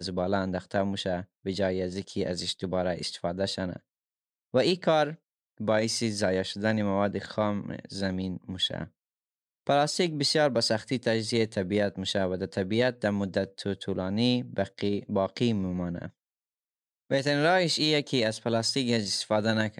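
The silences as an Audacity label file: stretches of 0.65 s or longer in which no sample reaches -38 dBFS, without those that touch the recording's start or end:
3.760000	4.540000	silence
8.850000	9.670000	silence
16.080000	17.110000	silence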